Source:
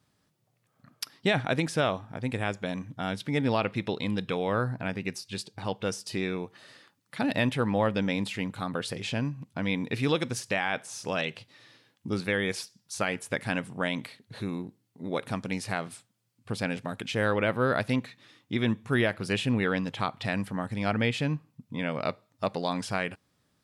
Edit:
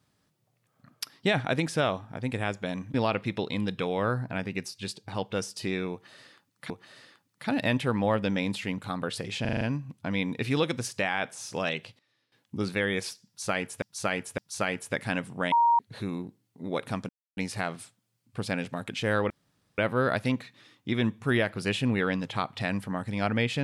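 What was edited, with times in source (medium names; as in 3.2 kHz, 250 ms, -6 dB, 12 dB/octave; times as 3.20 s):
2.94–3.44 s: delete
6.42–7.20 s: loop, 2 plays
9.13 s: stutter 0.04 s, 6 plays
11.19–12.16 s: dip -18.5 dB, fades 0.32 s logarithmic
12.78–13.34 s: loop, 3 plays
13.92–14.19 s: bleep 938 Hz -18 dBFS
15.49 s: insert silence 0.28 s
17.42 s: insert room tone 0.48 s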